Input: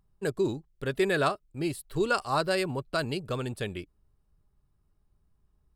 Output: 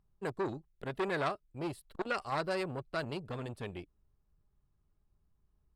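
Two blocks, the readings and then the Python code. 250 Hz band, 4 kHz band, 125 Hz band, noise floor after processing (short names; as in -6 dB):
-8.0 dB, -10.0 dB, -7.5 dB, -75 dBFS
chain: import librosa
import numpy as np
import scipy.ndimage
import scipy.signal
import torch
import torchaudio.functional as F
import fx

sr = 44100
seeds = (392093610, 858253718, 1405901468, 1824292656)

y = fx.high_shelf(x, sr, hz=5500.0, db=-10.0)
y = fx.transformer_sat(y, sr, knee_hz=1300.0)
y = y * librosa.db_to_amplitude(-4.5)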